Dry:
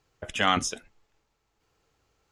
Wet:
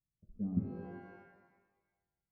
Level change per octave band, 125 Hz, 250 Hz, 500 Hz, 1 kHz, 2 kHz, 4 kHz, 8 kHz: -0.5 dB, -2.0 dB, -15.0 dB, -29.0 dB, -29.0 dB, under -40 dB, under -40 dB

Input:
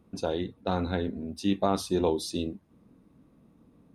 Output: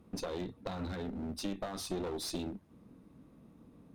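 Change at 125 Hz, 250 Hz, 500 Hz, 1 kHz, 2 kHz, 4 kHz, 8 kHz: -8.5 dB, -9.0 dB, -10.5 dB, -11.5 dB, -7.0 dB, -5.5 dB, -3.0 dB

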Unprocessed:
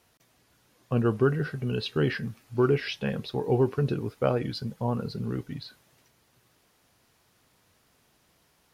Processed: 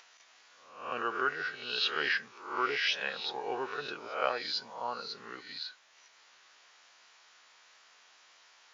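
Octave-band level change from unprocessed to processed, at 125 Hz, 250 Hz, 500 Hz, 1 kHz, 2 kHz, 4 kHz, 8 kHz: -32.5 dB, -18.5 dB, -11.0 dB, +2.0 dB, +5.0 dB, +5.5 dB, no reading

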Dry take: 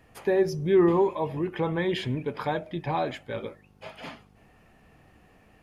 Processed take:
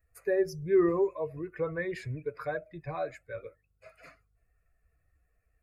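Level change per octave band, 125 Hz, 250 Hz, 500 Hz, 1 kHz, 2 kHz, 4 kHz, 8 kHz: -8.0 dB, -6.5 dB, -4.0 dB, -10.0 dB, -4.0 dB, -16.0 dB, no reading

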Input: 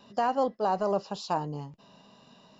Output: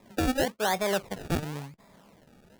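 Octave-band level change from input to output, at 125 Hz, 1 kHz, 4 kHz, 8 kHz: +4.5 dB, -4.5 dB, +8.0 dB, no reading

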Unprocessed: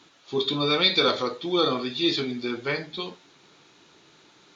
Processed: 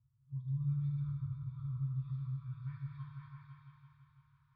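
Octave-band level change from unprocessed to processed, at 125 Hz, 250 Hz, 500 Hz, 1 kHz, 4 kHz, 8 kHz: +4.0 dB, under -15 dB, under -40 dB, -31.5 dB, under -40 dB, no reading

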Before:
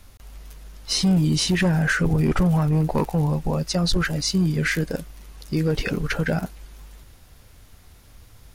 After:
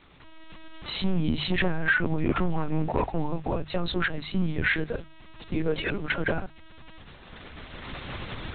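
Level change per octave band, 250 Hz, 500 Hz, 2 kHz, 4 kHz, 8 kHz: -7.0 dB, -3.5 dB, -0.5 dB, -7.0 dB, under -40 dB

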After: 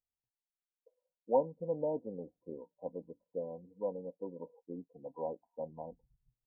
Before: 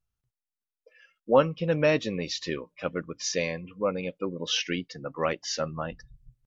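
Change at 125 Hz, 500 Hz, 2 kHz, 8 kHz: -17.0 dB, -9.0 dB, under -40 dB, no reading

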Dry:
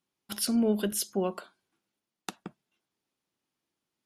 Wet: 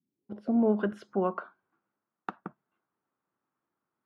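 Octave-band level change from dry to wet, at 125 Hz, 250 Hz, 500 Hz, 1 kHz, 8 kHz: 0.0 dB, +0.5 dB, +1.5 dB, +5.0 dB, under -30 dB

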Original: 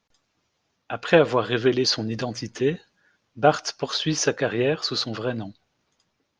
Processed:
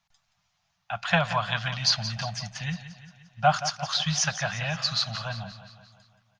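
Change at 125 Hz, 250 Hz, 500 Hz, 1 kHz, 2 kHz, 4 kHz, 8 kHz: -0.5 dB, -10.0 dB, -12.5 dB, 0.0 dB, -0.5 dB, 0.0 dB, +0.5 dB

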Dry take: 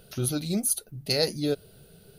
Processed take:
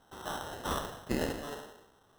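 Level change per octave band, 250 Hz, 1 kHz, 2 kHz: -8.5 dB, +7.0 dB, -2.0 dB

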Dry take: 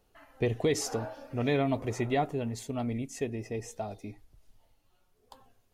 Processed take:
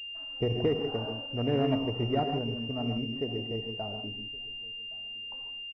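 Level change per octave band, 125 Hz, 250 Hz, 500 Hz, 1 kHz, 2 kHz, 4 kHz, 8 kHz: +1.5 dB, +1.5 dB, +0.5 dB, -0.5 dB, +5.0 dB, no reading, under -30 dB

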